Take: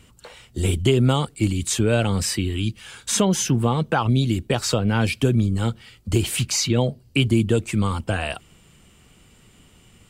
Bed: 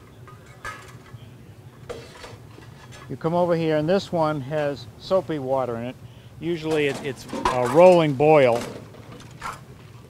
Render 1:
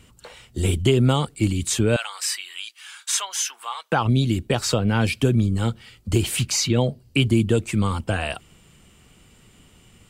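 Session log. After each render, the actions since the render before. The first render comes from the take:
0:01.96–0:03.92: high-pass filter 1,000 Hz 24 dB per octave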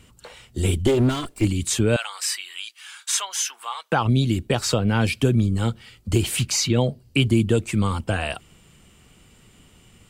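0:00.86–0:01.45: lower of the sound and its delayed copy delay 2.9 ms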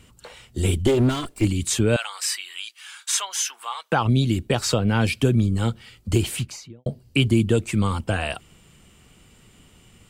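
0:06.14–0:06.86: fade out and dull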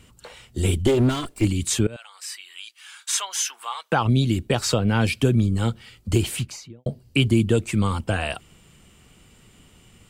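0:01.87–0:03.31: fade in, from −21.5 dB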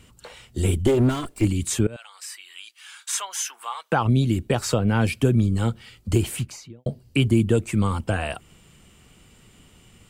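dynamic equaliser 4,000 Hz, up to −6 dB, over −41 dBFS, Q 0.9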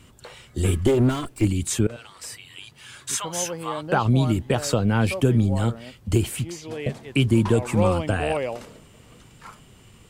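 mix in bed −11 dB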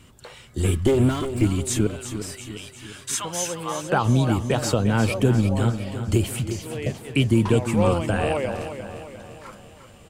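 repeating echo 352 ms, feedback 52%, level −10 dB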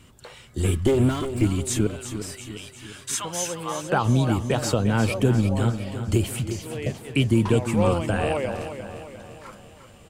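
level −1 dB

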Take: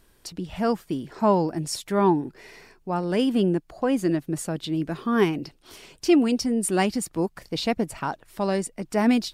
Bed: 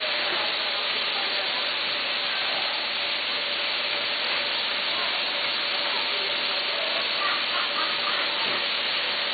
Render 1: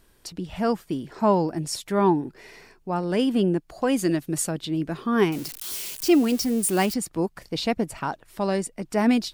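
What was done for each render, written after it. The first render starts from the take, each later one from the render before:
0:03.70–0:04.51: high-shelf EQ 2,500 Hz +8.5 dB
0:05.32–0:06.94: spike at every zero crossing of −25.5 dBFS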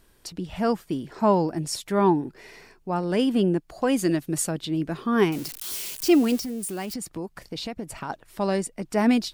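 0:06.38–0:08.10: downward compressor 5 to 1, threshold −29 dBFS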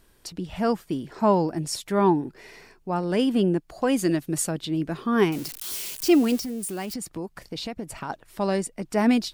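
no processing that can be heard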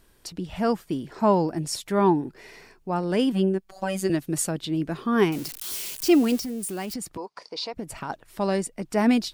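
0:03.32–0:04.10: phases set to zero 191 Hz
0:07.17–0:07.74: loudspeaker in its box 450–7,700 Hz, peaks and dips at 460 Hz +5 dB, 980 Hz +9 dB, 1,700 Hz −5 dB, 3,000 Hz −4 dB, 4,800 Hz +8 dB, 7,600 Hz −7 dB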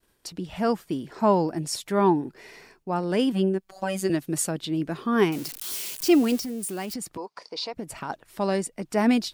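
downward expander −53 dBFS
low-shelf EQ 73 Hz −9 dB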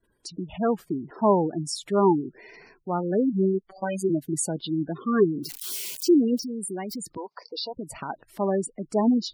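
gate on every frequency bin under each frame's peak −15 dB strong
dynamic equaliser 410 Hz, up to +3 dB, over −38 dBFS, Q 7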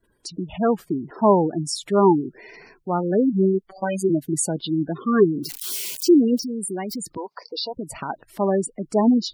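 level +4 dB

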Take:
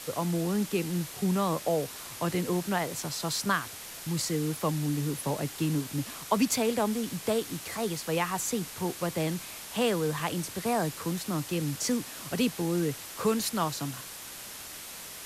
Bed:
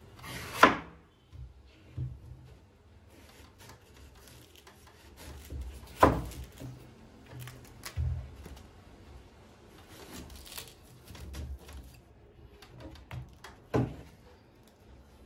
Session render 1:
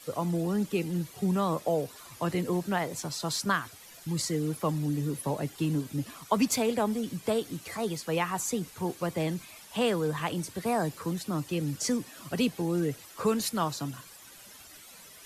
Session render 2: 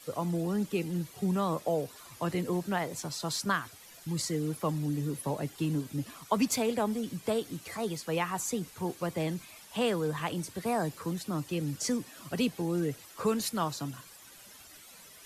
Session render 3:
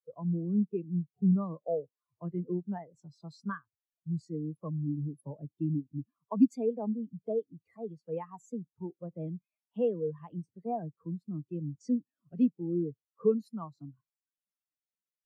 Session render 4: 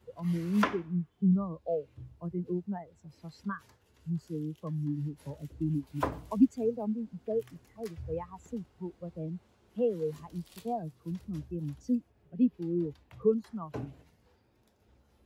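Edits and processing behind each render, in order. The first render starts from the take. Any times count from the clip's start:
broadband denoise 12 dB, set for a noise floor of −43 dBFS
level −2 dB
in parallel at −2 dB: downward compressor, threshold −38 dBFS, peak gain reduction 15 dB; on the sum: every bin expanded away from the loudest bin 2.5 to 1
mix in bed −10 dB

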